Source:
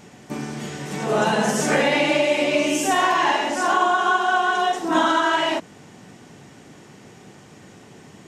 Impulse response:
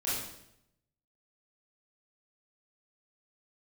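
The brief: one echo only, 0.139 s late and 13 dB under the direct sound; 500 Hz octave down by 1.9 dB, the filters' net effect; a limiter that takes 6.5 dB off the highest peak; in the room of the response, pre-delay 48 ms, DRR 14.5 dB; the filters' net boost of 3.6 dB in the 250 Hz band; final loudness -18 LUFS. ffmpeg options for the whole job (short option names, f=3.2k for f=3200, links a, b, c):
-filter_complex "[0:a]equalizer=f=250:t=o:g=6,equalizer=f=500:t=o:g=-4,alimiter=limit=-12.5dB:level=0:latency=1,aecho=1:1:139:0.224,asplit=2[a][b];[1:a]atrim=start_sample=2205,adelay=48[c];[b][c]afir=irnorm=-1:irlink=0,volume=-20.5dB[d];[a][d]amix=inputs=2:normalize=0,volume=3.5dB"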